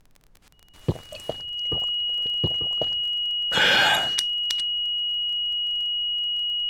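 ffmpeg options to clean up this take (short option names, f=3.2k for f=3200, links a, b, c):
-af "adeclick=t=4,bandreject=f=2.9k:w=30,agate=range=-21dB:threshold=-44dB"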